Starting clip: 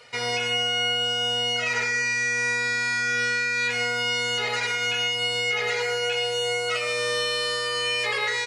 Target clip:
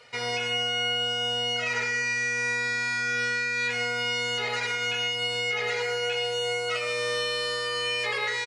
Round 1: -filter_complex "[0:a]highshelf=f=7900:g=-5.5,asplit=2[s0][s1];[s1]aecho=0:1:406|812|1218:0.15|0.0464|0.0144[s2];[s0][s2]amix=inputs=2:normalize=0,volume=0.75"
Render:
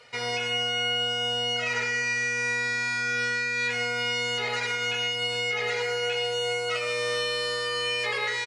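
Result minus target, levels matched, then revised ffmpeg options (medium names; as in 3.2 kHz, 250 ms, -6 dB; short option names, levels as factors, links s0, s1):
echo-to-direct +6 dB
-filter_complex "[0:a]highshelf=f=7900:g=-5.5,asplit=2[s0][s1];[s1]aecho=0:1:406|812:0.075|0.0232[s2];[s0][s2]amix=inputs=2:normalize=0,volume=0.75"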